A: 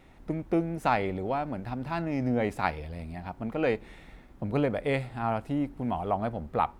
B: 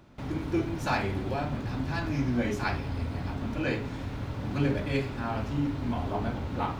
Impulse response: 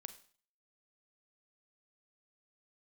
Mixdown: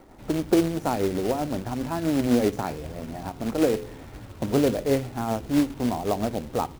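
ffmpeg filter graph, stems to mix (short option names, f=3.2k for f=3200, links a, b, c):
-filter_complex "[0:a]highshelf=f=2.1k:t=q:w=1.5:g=-9,tremolo=f=7.7:d=0.44,firequalizer=gain_entry='entry(110,0);entry(320,9);entry(1500,0)':delay=0.05:min_phase=1,volume=2.5dB[a];[1:a]asplit=2[b][c];[c]adelay=8.8,afreqshift=-3[d];[b][d]amix=inputs=2:normalize=1,adelay=1.1,volume=-6dB,asplit=2[e][f];[f]volume=-15.5dB[g];[2:a]atrim=start_sample=2205[h];[g][h]afir=irnorm=-1:irlink=0[i];[a][e][i]amix=inputs=3:normalize=0,bandreject=f=85.67:t=h:w=4,bandreject=f=171.34:t=h:w=4,bandreject=f=257.01:t=h:w=4,bandreject=f=342.68:t=h:w=4,bandreject=f=428.35:t=h:w=4,bandreject=f=514.02:t=h:w=4,acrossover=split=460|3000[j][k][l];[k]acompressor=threshold=-34dB:ratio=2.5[m];[j][m][l]amix=inputs=3:normalize=0,acrusher=bits=3:mode=log:mix=0:aa=0.000001"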